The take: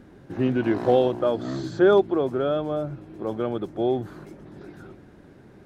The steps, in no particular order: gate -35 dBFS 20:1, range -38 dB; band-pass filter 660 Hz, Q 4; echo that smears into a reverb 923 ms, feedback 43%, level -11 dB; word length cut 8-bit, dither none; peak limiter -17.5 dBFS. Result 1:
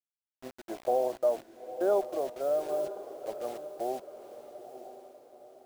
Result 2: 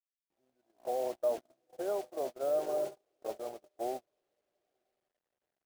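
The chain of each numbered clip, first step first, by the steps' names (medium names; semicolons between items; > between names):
band-pass filter > peak limiter > gate > word length cut > echo that smears into a reverb; echo that smears into a reverb > peak limiter > band-pass filter > word length cut > gate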